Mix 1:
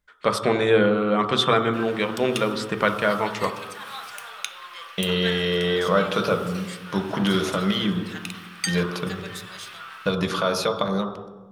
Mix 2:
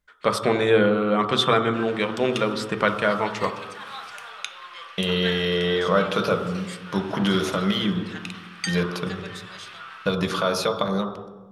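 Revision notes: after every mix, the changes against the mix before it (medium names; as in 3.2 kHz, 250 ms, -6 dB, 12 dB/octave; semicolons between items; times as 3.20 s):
background: add distance through air 58 m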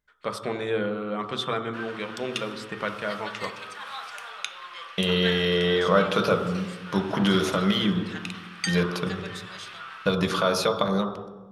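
first voice -9.0 dB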